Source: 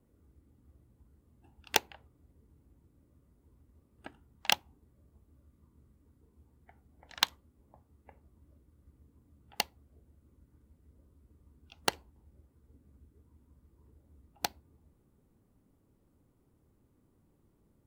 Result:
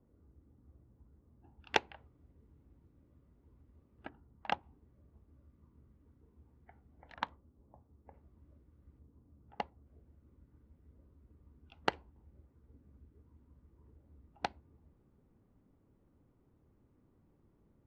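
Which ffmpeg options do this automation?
-af "asetnsamples=n=441:p=0,asendcmd='1.6 lowpass f 2800;4.09 lowpass f 1300;4.63 lowpass f 2400;7.14 lowpass f 1100;8.14 lowpass f 2600;8.99 lowpass f 1200;9.86 lowpass f 2400',lowpass=1400"

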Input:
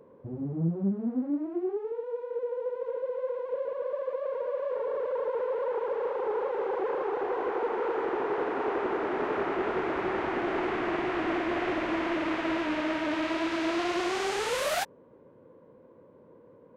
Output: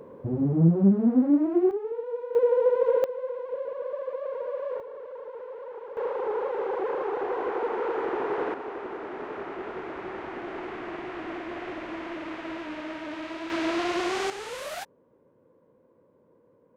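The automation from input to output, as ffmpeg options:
-af "asetnsamples=n=441:p=0,asendcmd='1.71 volume volume 2dB;2.35 volume volume 11dB;3.04 volume volume -0.5dB;4.8 volume volume -9.5dB;5.97 volume volume 1dB;8.54 volume volume -6.5dB;13.5 volume volume 1.5dB;14.3 volume volume -7dB',volume=2.82"

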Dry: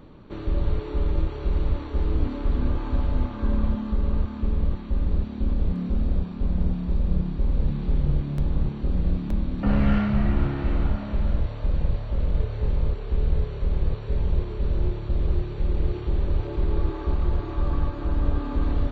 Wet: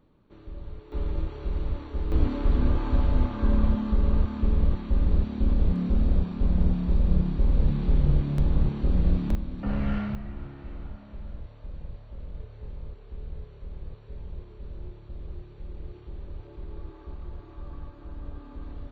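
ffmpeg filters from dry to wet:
-af "asetnsamples=n=441:p=0,asendcmd='0.92 volume volume -5.5dB;2.12 volume volume 1dB;9.35 volume volume -7dB;10.15 volume volume -15.5dB',volume=0.168"

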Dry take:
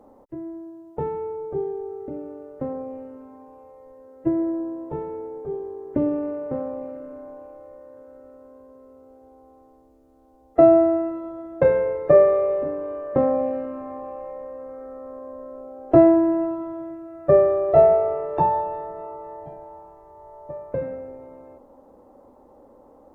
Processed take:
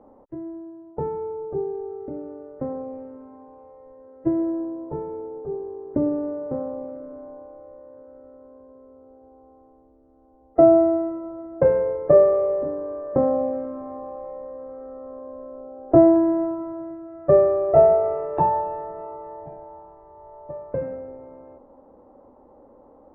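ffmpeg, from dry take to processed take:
-af "asetnsamples=n=441:p=0,asendcmd='0.91 lowpass f 1300;1.75 lowpass f 1700;4.65 lowpass f 1200;16.16 lowpass f 1600;18.04 lowpass f 2200;19.29 lowpass f 1800',lowpass=1800"

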